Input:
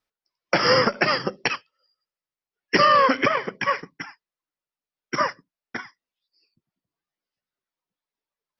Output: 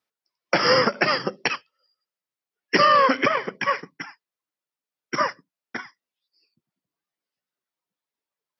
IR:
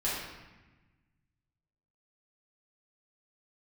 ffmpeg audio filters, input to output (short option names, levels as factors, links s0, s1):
-af "highpass=130"